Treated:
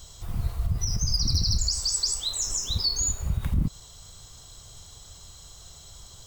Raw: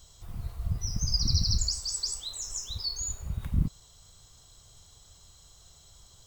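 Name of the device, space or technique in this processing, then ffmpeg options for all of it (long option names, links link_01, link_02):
clipper into limiter: -filter_complex "[0:a]asoftclip=type=hard:threshold=-18dB,alimiter=level_in=1dB:limit=-24dB:level=0:latency=1:release=101,volume=-1dB,asettb=1/sr,asplit=3[link_01][link_02][link_03];[link_01]atrim=end=2.464[link_04];[link_02]atrim=start=2.46:end=3.12,asetpts=PTS-STARTPTS,afade=type=in:duration=0.004:curve=qsin,afade=type=out:start_time=0.656:duration=0.004:curve=qsin,equalizer=frequency=240:width_type=o:width=1.5:gain=7[link_05];[link_03]atrim=start=3.116[link_06];[link_04][link_05]acrossfade=duration=0.004:curve1=hsin:curve2=qsin[link_07];[link_07][link_06]acrossfade=duration=0.004:curve1=qsin:curve2=hsin,volume=8.5dB"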